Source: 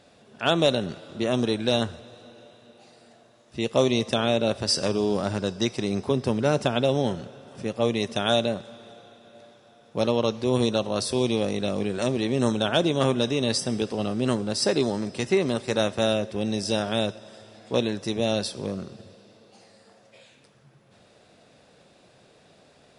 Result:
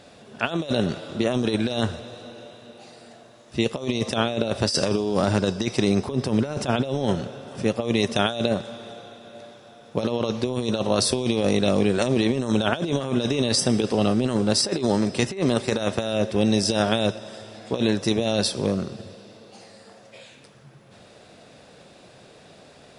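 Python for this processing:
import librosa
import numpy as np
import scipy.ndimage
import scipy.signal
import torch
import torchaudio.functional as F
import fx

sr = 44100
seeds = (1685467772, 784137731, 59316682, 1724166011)

y = fx.over_compress(x, sr, threshold_db=-26.0, ratio=-0.5)
y = y * 10.0 ** (4.5 / 20.0)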